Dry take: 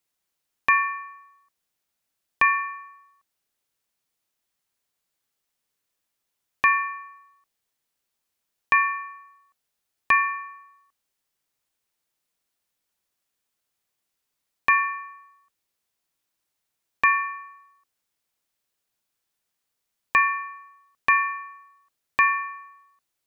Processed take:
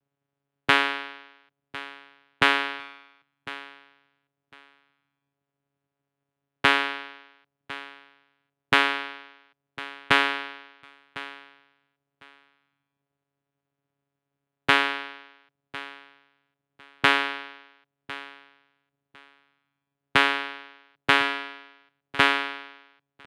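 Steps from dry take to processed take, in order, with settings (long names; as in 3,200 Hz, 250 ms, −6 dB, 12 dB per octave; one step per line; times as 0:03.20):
low-pass filter 1,500 Hz 12 dB per octave
low-shelf EQ 130 Hz +8.5 dB
channel vocoder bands 4, saw 140 Hz
on a send: repeating echo 1,053 ms, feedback 18%, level −17 dB
on the sum: formants moved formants +5 semitones
level +3 dB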